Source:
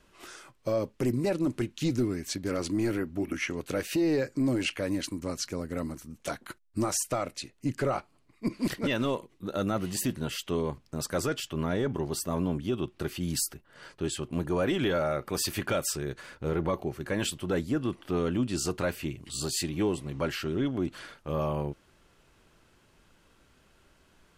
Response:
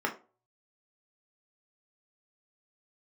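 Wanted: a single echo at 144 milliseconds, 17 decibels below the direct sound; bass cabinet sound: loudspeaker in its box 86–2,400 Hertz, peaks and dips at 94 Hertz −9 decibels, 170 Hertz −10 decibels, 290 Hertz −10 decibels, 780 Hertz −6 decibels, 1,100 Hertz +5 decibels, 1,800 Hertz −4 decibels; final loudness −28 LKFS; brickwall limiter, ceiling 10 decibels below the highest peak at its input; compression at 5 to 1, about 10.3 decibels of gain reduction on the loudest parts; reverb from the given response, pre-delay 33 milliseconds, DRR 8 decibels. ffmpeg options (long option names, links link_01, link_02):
-filter_complex "[0:a]acompressor=threshold=-36dB:ratio=5,alimiter=level_in=9.5dB:limit=-24dB:level=0:latency=1,volume=-9.5dB,aecho=1:1:144:0.141,asplit=2[link_01][link_02];[1:a]atrim=start_sample=2205,adelay=33[link_03];[link_02][link_03]afir=irnorm=-1:irlink=0,volume=-16.5dB[link_04];[link_01][link_04]amix=inputs=2:normalize=0,highpass=frequency=86:width=0.5412,highpass=frequency=86:width=1.3066,equalizer=frequency=94:width_type=q:width=4:gain=-9,equalizer=frequency=170:width_type=q:width=4:gain=-10,equalizer=frequency=290:width_type=q:width=4:gain=-10,equalizer=frequency=780:width_type=q:width=4:gain=-6,equalizer=frequency=1100:width_type=q:width=4:gain=5,equalizer=frequency=1800:width_type=q:width=4:gain=-4,lowpass=frequency=2400:width=0.5412,lowpass=frequency=2400:width=1.3066,volume=18.5dB"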